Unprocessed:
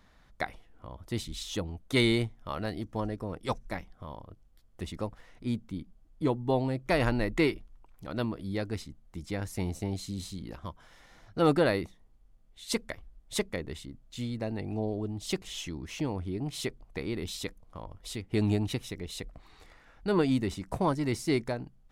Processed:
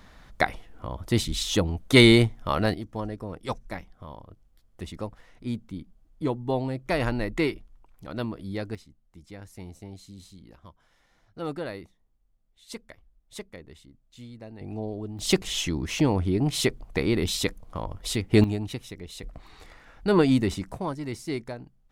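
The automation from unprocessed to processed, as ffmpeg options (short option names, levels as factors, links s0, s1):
-af "asetnsamples=n=441:p=0,asendcmd='2.74 volume volume 0.5dB;8.75 volume volume -9dB;14.61 volume volume -1dB;15.19 volume volume 10dB;18.44 volume volume -1.5dB;19.23 volume volume 6dB;20.72 volume volume -3.5dB',volume=3.16"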